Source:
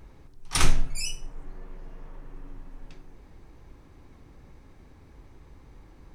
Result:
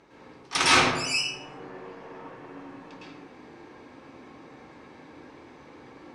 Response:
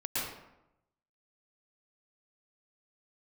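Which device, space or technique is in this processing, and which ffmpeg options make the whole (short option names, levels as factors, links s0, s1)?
supermarket ceiling speaker: -filter_complex "[0:a]highpass=290,lowpass=5700[s0];[1:a]atrim=start_sample=2205[s1];[s0][s1]afir=irnorm=-1:irlink=0,volume=1.88"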